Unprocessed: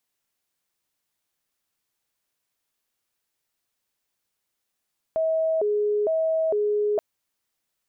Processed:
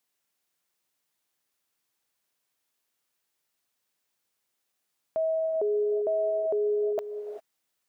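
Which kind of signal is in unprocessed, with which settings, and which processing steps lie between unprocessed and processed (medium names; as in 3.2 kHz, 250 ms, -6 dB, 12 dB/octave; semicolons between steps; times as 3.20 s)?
siren hi-lo 417–643 Hz 1.1 per s sine -20 dBFS 1.83 s
high-pass 130 Hz 6 dB/octave; peak limiter -23 dBFS; gated-style reverb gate 420 ms rising, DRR 9.5 dB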